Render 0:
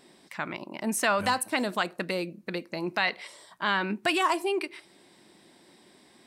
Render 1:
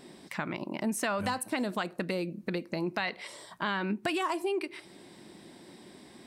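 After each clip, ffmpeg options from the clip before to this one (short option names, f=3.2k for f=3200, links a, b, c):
-af "lowshelf=f=410:g=7.5,acompressor=threshold=-35dB:ratio=2.5,volume=2.5dB"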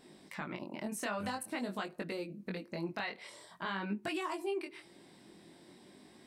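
-af "flanger=delay=19:depth=5.4:speed=0.48,volume=-3.5dB"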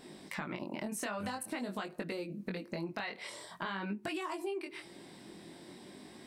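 -af "acompressor=threshold=-42dB:ratio=4,volume=6dB"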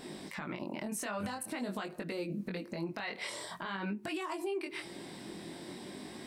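-af "alimiter=level_in=10.5dB:limit=-24dB:level=0:latency=1:release=192,volume=-10.5dB,volume=6dB"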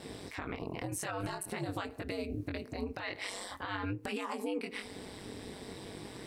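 -af "aeval=exprs='val(0)*sin(2*PI*97*n/s)':c=same,volume=3dB"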